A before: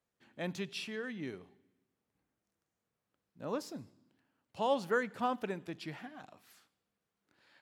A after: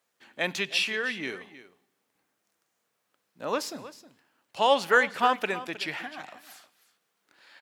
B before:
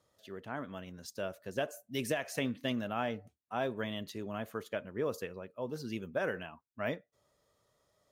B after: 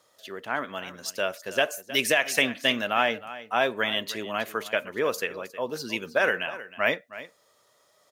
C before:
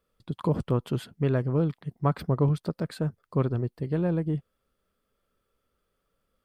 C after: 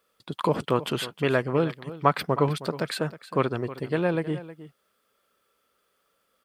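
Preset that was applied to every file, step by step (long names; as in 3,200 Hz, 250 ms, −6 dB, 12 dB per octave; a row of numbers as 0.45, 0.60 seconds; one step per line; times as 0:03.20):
high-pass filter 750 Hz 6 dB per octave
dynamic equaliser 2,400 Hz, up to +5 dB, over −55 dBFS, Q 1.2
single-tap delay 315 ms −15.5 dB
loudness normalisation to −27 LKFS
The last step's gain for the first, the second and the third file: +12.5, +13.0, +10.0 decibels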